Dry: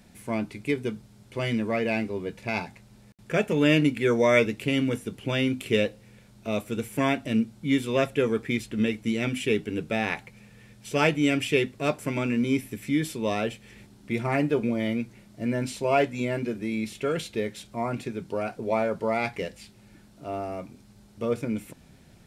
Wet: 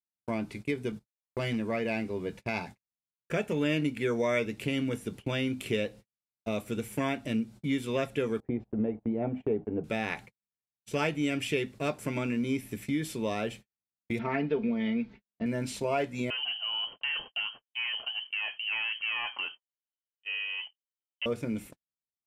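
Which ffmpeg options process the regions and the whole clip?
-filter_complex "[0:a]asettb=1/sr,asplit=3[s0][s1][s2];[s0]atrim=end=0.924[s3];[s1]atrim=start=0.92:end=1.59,asetpts=PTS-STARTPTS,afade=t=in:d=0.004:c=qsin,afade=t=out:st=0.666:d=0.004:c=qsin,agate=range=0.141:threshold=0.00794:ratio=16:release=100:detection=peak,volume=9.44,asoftclip=hard,volume=0.106[s4];[s2]atrim=start=1.586[s5];[s3][s4]acrossfade=d=0.004:c1=hsin:c2=qsin[s6];[s6][s5]acrossfade=d=0.004:c1=qsin:c2=hsin,asettb=1/sr,asplit=3[s7][s8][s9];[s7]atrim=end=8.404[s10];[s8]atrim=start=8.4:end=9.84,asetpts=PTS-STARTPTS,afade=t=in:d=0.004:c=qsin,afade=t=out:st=1.436:d=0.004:c=qsin,lowpass=f=750:t=q:w=3.2,agate=range=0.0794:threshold=0.01:ratio=16:release=100:detection=peak[s11];[s9]atrim=start=9.836[s12];[s10][s11]acrossfade=d=0.004:c1=hsin:c2=qsin[s13];[s13][s12]acrossfade=d=0.004:c1=qsin:c2=hsin,asettb=1/sr,asplit=3[s14][s15][s16];[s14]atrim=end=14.194[s17];[s15]atrim=start=14.19:end=15.46,asetpts=PTS-STARTPTS,afade=t=in:d=0.004:c=qsin,afade=t=out:st=1.266:d=0.004:c=qsin,lowpass=f=4100:w=0.5412,lowpass=f=4100:w=1.3066,bandreject=f=660:w=19,aecho=1:1:4.5:0.67,atrim=end_sample=56007[s18];[s16]atrim=start=15.456[s19];[s17][s18]acrossfade=d=0.004:c1=hsin:c2=qsin[s20];[s20][s19]acrossfade=d=0.004:c1=qsin:c2=hsin,asettb=1/sr,asplit=3[s21][s22][s23];[s21]atrim=end=16.304[s24];[s22]atrim=start=16.3:end=21.26,asetpts=PTS-STARTPTS,afade=t=in:d=0.004:c=qsin,afade=t=out:st=4.956:d=0.004:c=qsin,aeval=exprs='(tanh(15.8*val(0)+0.2)-tanh(0.2))/15.8':c=same,lowpass=f=2700:t=q:w=0.5098,lowpass=f=2700:t=q:w=0.6013,lowpass=f=2700:t=q:w=0.9,lowpass=f=2700:t=q:w=2.563,afreqshift=-3200[s25];[s23]atrim=start=21.256[s26];[s24][s25]acrossfade=d=0.004:c1=hsin:c2=qsin[s27];[s27][s26]acrossfade=d=0.004:c1=qsin:c2=hsin,agate=range=0.00126:threshold=0.01:ratio=16:detection=peak,acompressor=threshold=0.0282:ratio=2"

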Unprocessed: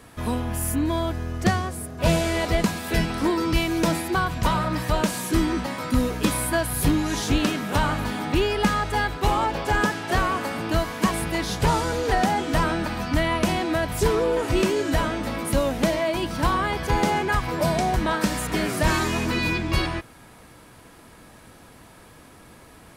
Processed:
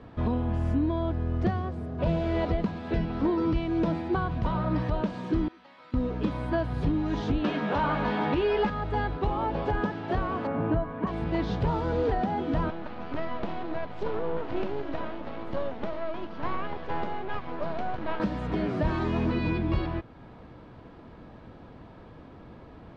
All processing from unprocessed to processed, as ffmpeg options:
-filter_complex "[0:a]asettb=1/sr,asplit=3[s0][s1][s2];[s0]atrim=end=5.484[s3];[s1]atrim=start=5.48:end=5.94,asetpts=PTS-STARTPTS,afade=t=in:d=0.004:c=qsin,afade=t=out:st=0.456:d=0.004:c=qsin,acrossover=split=3700[s4][s5];[s5]acompressor=threshold=0.00251:ratio=4:attack=1:release=60[s6];[s4][s6]amix=inputs=2:normalize=0,aderivative[s7];[s2]atrim=start=5.936[s8];[s3][s7]acrossfade=d=0.004:c1=hsin:c2=qsin[s9];[s9][s8]acrossfade=d=0.004:c1=qsin:c2=hsin,asettb=1/sr,asplit=3[s10][s11][s12];[s10]atrim=end=7.444[s13];[s11]atrim=start=7.44:end=8.7,asetpts=PTS-STARTPTS,afade=t=in:d=0.004:c=qsin,afade=t=out:st=1.256:d=0.004:c=qsin,asplit=2[s14][s15];[s15]adelay=14,volume=0.562[s16];[s14][s16]amix=inputs=2:normalize=0,atrim=end_sample=55566,asplit=2[s17][s18];[s18]highpass=f=720:p=1,volume=5.01,asoftclip=type=tanh:threshold=0.398[s19];[s17][s19]amix=inputs=2:normalize=0,lowpass=f=4500:p=1,volume=0.501[s20];[s12]atrim=start=8.696[s21];[s13][s20]acrossfade=d=0.004:c1=hsin:c2=qsin[s22];[s22][s21]acrossfade=d=0.004:c1=qsin:c2=hsin,asettb=1/sr,asplit=3[s23][s24][s25];[s23]atrim=end=10.474[s26];[s24]atrim=start=10.47:end=11.07,asetpts=PTS-STARTPTS,afade=t=in:d=0.004:c=qsin,afade=t=out:st=0.596:d=0.004:c=qsin,lowpass=1700,aecho=1:1:7.3:0.48,atrim=end_sample=26460[s27];[s25]atrim=start=11.066[s28];[s26][s27]acrossfade=d=0.004:c1=hsin:c2=qsin[s29];[s29][s28]acrossfade=d=0.004:c1=qsin:c2=hsin,asettb=1/sr,asplit=3[s30][s31][s32];[s30]atrim=end=12.704[s33];[s31]atrim=start=12.7:end=18.2,asetpts=PTS-STARTPTS,afade=t=in:d=0.004:c=qsin,afade=t=out:st=5.496:d=0.004:c=qsin,highpass=f=530:p=1,aeval=exprs='max(val(0),0)':c=same,highshelf=f=5800:g=-10[s34];[s32]atrim=start=18.196[s35];[s33][s34]acrossfade=d=0.004:c1=hsin:c2=qsin[s36];[s36][s35]acrossfade=d=0.004:c1=qsin:c2=hsin,lowpass=f=3400:w=0.5412,lowpass=f=3400:w=1.3066,equalizer=f=2300:t=o:w=2.1:g=-11.5,alimiter=limit=0.0944:level=0:latency=1:release=491,volume=1.41"

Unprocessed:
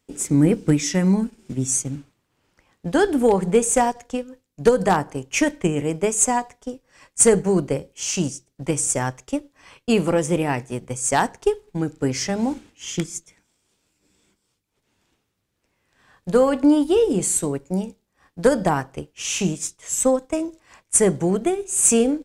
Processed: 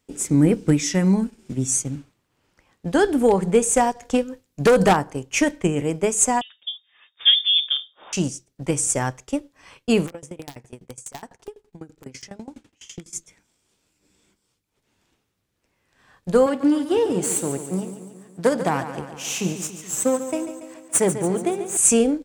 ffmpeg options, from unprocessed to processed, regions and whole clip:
-filter_complex "[0:a]asettb=1/sr,asplit=3[s0][s1][s2];[s0]atrim=end=4.024[s3];[s1]atrim=start=4.02:end=4.93,asetpts=PTS-STARTPTS,afade=t=in:d=0.004:c=qsin,afade=t=out:st=0.906:d=0.004:c=qsin,acontrast=73,asoftclip=type=hard:threshold=0.282[s4];[s2]atrim=start=4.926[s5];[s3][s4]acrossfade=d=0.004:c1=hsin:c2=qsin[s6];[s6][s5]acrossfade=d=0.004:c1=qsin:c2=hsin,asettb=1/sr,asplit=3[s7][s8][s9];[s7]atrim=end=6.414[s10];[s8]atrim=start=6.41:end=8.13,asetpts=PTS-STARTPTS,afade=t=in:d=0.004:c=qsin,afade=t=out:st=1.716:d=0.004:c=qsin,highshelf=f=2200:g=-11.5,lowpass=f=3100:t=q:w=0.5098,lowpass=f=3100:t=q:w=0.6013,lowpass=f=3100:t=q:w=0.9,lowpass=f=3100:t=q:w=2.563,afreqshift=-3700[s11];[s9]atrim=start=8.126[s12];[s10][s11]acrossfade=d=0.004:c1=hsin:c2=qsin[s13];[s13][s12]acrossfade=d=0.004:c1=qsin:c2=hsin,asettb=1/sr,asplit=3[s14][s15][s16];[s14]atrim=end=10.064[s17];[s15]atrim=start=10.06:end=13.13,asetpts=PTS-STARTPTS,afade=t=in:d=0.004:c=qsin,afade=t=out:st=3.066:d=0.004:c=qsin,acompressor=threshold=0.0282:ratio=3:attack=3.2:release=140:knee=1:detection=peak,aeval=exprs='(mod(12.6*val(0)+1,2)-1)/12.6':c=same,aeval=exprs='val(0)*pow(10,-23*if(lt(mod(12*n/s,1),2*abs(12)/1000),1-mod(12*n/s,1)/(2*abs(12)/1000),(mod(12*n/s,1)-2*abs(12)/1000)/(1-2*abs(12)/1000))/20)':c=same[s18];[s16]atrim=start=13.126[s19];[s17][s18]acrossfade=d=0.004:c1=hsin:c2=qsin[s20];[s20][s19]acrossfade=d=0.004:c1=qsin:c2=hsin,asettb=1/sr,asplit=3[s21][s22][s23];[s21]atrim=end=16.464[s24];[s22]atrim=start=16.46:end=21.77,asetpts=PTS-STARTPTS,afade=t=in:d=0.004:c=qsin,afade=t=out:st=5.306:d=0.004:c=qsin,aeval=exprs='if(lt(val(0),0),0.447*val(0),val(0))':c=same,highpass=f=82:w=0.5412,highpass=f=82:w=1.3066,aecho=1:1:142|284|426|568|710|852|994:0.282|0.166|0.0981|0.0579|0.0342|0.0201|0.0119,atrim=end_sample=234171[s25];[s23]atrim=start=21.766[s26];[s24][s25]acrossfade=d=0.004:c1=hsin:c2=qsin[s27];[s27][s26]acrossfade=d=0.004:c1=qsin:c2=hsin"

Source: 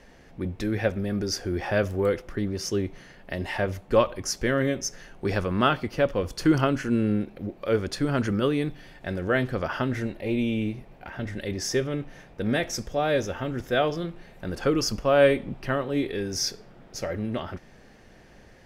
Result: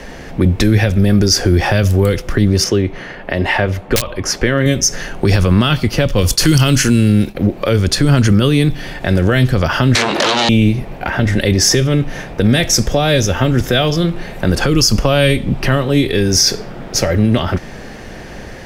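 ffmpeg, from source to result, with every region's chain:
-filter_complex "[0:a]asettb=1/sr,asplit=3[s0][s1][s2];[s0]atrim=end=2.644[s3];[s1]atrim=start=2.64:end=4.66,asetpts=PTS-STARTPTS,afade=t=in:d=0.004:c=qsin,afade=t=out:st=2.016:d=0.004:c=qsin,bass=f=250:g=-6,treble=f=4000:g=-13,aeval=exprs='(mod(3.98*val(0)+1,2)-1)/3.98':c=same[s4];[s2]atrim=start=4.656[s5];[s3][s4]acrossfade=d=0.004:c1=hsin:c2=qsin[s6];[s6][s5]acrossfade=d=0.004:c1=qsin:c2=hsin,asettb=1/sr,asplit=3[s7][s8][s9];[s7]atrim=end=6.184[s10];[s8]atrim=start=6.18:end=7.35,asetpts=PTS-STARTPTS,afade=t=in:d=0.004:c=qsin,afade=t=out:st=1.166:d=0.004:c=qsin,agate=range=0.0224:threshold=0.01:ratio=3:release=100:detection=peak,highshelf=f=2900:g=10.5[s11];[s9]atrim=start=7.346[s12];[s10][s11]acrossfade=d=0.004:c1=hsin:c2=qsin[s13];[s13][s12]acrossfade=d=0.004:c1=qsin:c2=hsin,asettb=1/sr,asplit=3[s14][s15][s16];[s14]atrim=end=9.954[s17];[s15]atrim=start=9.95:end=10.49,asetpts=PTS-STARTPTS,afade=t=in:d=0.004:c=qsin,afade=t=out:st=0.536:d=0.004:c=qsin,acompressor=threshold=0.0141:ratio=4:attack=3.2:release=140:knee=1:detection=peak,aeval=exprs='0.0668*sin(PI/2*7.08*val(0)/0.0668)':c=same,highpass=340,lowpass=7200[s18];[s16]atrim=start=10.486[s19];[s17][s18]acrossfade=d=0.004:c1=hsin:c2=qsin[s20];[s20][s19]acrossfade=d=0.004:c1=qsin:c2=hsin,acrossover=split=170|3000[s21][s22][s23];[s22]acompressor=threshold=0.0178:ratio=6[s24];[s21][s24][s23]amix=inputs=3:normalize=0,alimiter=level_in=12.6:limit=0.891:release=50:level=0:latency=1,volume=0.891"

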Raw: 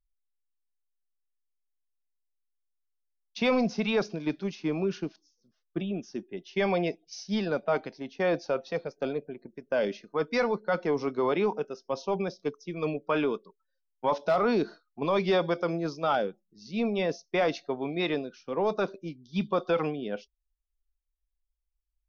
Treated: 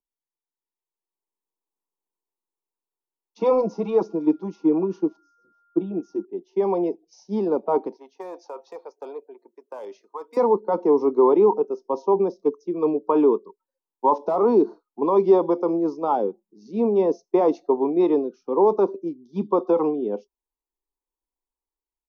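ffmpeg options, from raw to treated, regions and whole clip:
-filter_complex "[0:a]asettb=1/sr,asplit=3[s0][s1][s2];[s0]atrim=end=3.404[s3];[s1]atrim=start=3.4:end=6.25,asetpts=PTS-STARTPTS,afade=t=in:d=0.004:c=qsin,afade=t=out:st=2.846:d=0.004:c=qsin,aecho=1:1:6.2:0.93,atrim=end_sample=125685,aeval=exprs='val(0)+0.00398*sin(2*PI*1400*n/s)':c=same[s4];[s2]atrim=start=6.246[s5];[s3][s4]acrossfade=d=0.004:c1=hsin:c2=qsin[s6];[s6][s5]acrossfade=d=0.004:c1=qsin:c2=hsin,asettb=1/sr,asplit=3[s7][s8][s9];[s7]atrim=end=7.964[s10];[s8]atrim=start=7.96:end=10.37,asetpts=PTS-STARTPTS,afade=t=in:d=0.004:c=qsin,afade=t=out:st=2.406:d=0.004:c=qsin,highpass=1000,acompressor=threshold=0.0141:ratio=2:attack=3.2:release=140:knee=1:detection=peak,asoftclip=type=hard:threshold=0.0251[s11];[s9]atrim=start=10.366[s12];[s10][s11]acrossfade=d=0.004:c1=hsin:c2=qsin[s13];[s13][s12]acrossfade=d=0.004:c1=qsin:c2=hsin,firequalizer=gain_entry='entry(100,0);entry(200,13);entry(380,12);entry(620,-5);entry(940,8);entry(1500,-19);entry(7100,3)':delay=0.05:min_phase=1,dynaudnorm=f=440:g=5:m=2.51,acrossover=split=360 2300:gain=0.0891 1 0.251[s14][s15][s16];[s14][s15][s16]amix=inputs=3:normalize=0"

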